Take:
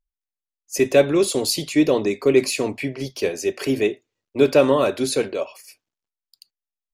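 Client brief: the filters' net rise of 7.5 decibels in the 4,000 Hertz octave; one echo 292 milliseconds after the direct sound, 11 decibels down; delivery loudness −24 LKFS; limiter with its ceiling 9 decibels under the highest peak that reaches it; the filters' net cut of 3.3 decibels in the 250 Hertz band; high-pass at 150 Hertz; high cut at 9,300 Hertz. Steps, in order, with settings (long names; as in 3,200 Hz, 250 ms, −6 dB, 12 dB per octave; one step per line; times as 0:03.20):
high-pass filter 150 Hz
low-pass filter 9,300 Hz
parametric band 250 Hz −4 dB
parametric band 4,000 Hz +9 dB
brickwall limiter −11.5 dBFS
single-tap delay 292 ms −11 dB
level −1 dB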